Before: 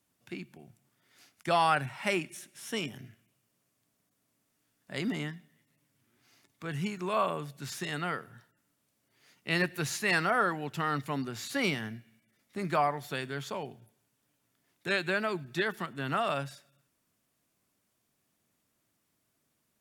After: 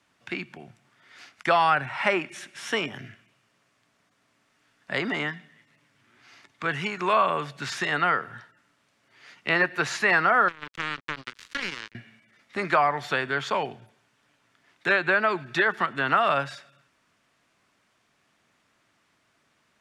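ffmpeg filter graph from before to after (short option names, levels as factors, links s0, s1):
-filter_complex "[0:a]asettb=1/sr,asplit=3[s0][s1][s2];[s0]atrim=end=10.484[s3];[s1]atrim=start=10.48:end=11.95,asetpts=PTS-STARTPTS,afade=t=in:d=0.004:c=qsin,afade=t=out:st=1.466:d=0.004:c=qsin,acompressor=threshold=0.0178:ratio=3:attack=3.2:release=140:knee=1:detection=peak,acrusher=bits=4:mix=0:aa=0.5,equalizer=f=720:t=o:w=0.76:g=-14.5[s4];[s2]atrim=start=11.946[s5];[s3][s4]acrossfade=d=0.004:c1=hsin:c2=qsin[s6];[s6][s5]acrossfade=d=0.004:c1=qsin:c2=hsin,lowpass=7000,equalizer=f=1600:w=0.43:g=11,acrossover=split=330|1600[s7][s8][s9];[s7]acompressor=threshold=0.00794:ratio=4[s10];[s8]acompressor=threshold=0.0562:ratio=4[s11];[s9]acompressor=threshold=0.0158:ratio=4[s12];[s10][s11][s12]amix=inputs=3:normalize=0,volume=1.78"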